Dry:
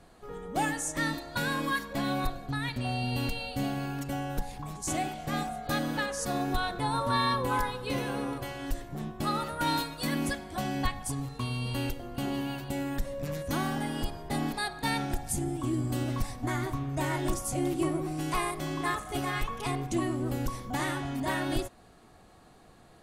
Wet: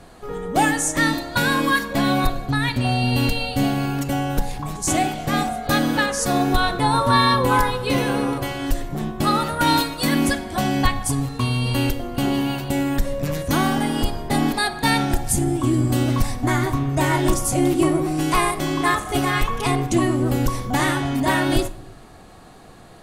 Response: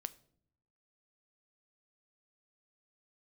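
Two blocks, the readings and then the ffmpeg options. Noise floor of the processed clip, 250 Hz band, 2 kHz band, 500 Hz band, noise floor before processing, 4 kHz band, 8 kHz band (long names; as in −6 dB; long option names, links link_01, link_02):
−44 dBFS, +11.5 dB, +11.0 dB, +11.0 dB, −56 dBFS, +11.5 dB, +11.0 dB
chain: -filter_complex "[0:a]asplit=2[link_01][link_02];[1:a]atrim=start_sample=2205,asetrate=33957,aresample=44100[link_03];[link_02][link_03]afir=irnorm=-1:irlink=0,volume=14.5dB[link_04];[link_01][link_04]amix=inputs=2:normalize=0,volume=-3.5dB"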